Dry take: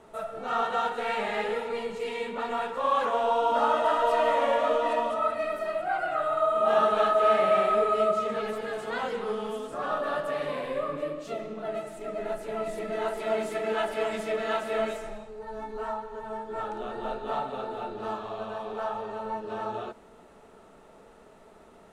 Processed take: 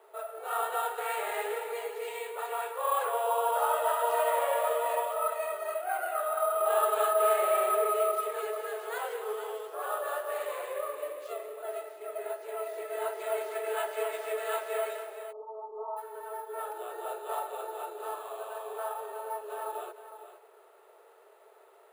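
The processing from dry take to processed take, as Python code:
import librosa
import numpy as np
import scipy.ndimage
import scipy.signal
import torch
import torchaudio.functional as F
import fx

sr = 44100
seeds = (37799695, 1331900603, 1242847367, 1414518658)

y = scipy.signal.sosfilt(scipy.signal.ellip(4, 1.0, 40, 390.0, 'highpass', fs=sr, output='sos'), x)
y = y + 10.0 ** (-11.5 / 20.0) * np.pad(y, (int(460 * sr / 1000.0), 0))[:len(y)]
y = np.repeat(scipy.signal.resample_poly(y, 1, 4), 4)[:len(y)]
y = fx.brickwall_lowpass(y, sr, high_hz=1300.0, at=(15.31, 15.96), fade=0.02)
y = y * 10.0 ** (-3.5 / 20.0)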